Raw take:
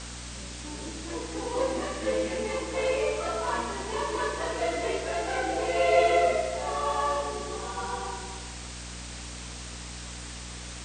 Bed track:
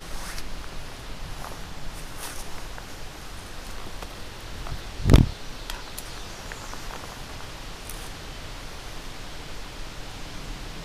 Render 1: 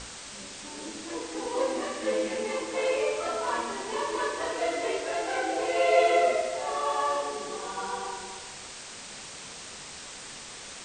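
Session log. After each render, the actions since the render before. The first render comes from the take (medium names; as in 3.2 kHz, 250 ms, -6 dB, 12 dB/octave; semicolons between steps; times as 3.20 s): hum notches 60/120/180/240/300/360 Hz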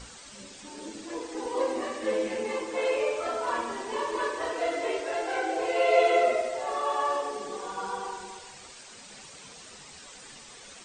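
noise reduction 9 dB, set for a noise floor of -43 dBFS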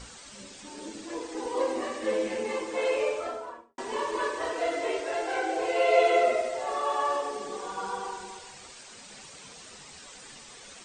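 3.04–3.78 s: studio fade out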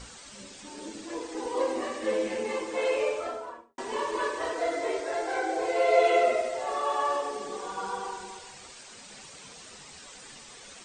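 4.54–6.04 s: peaking EQ 2.8 kHz -9 dB 0.3 oct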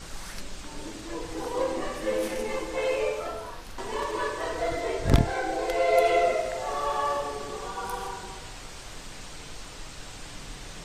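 add bed track -5.5 dB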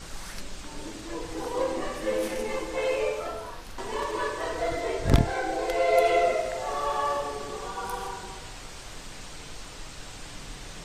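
no audible change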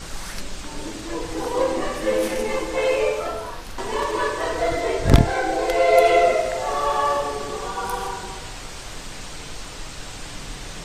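trim +6.5 dB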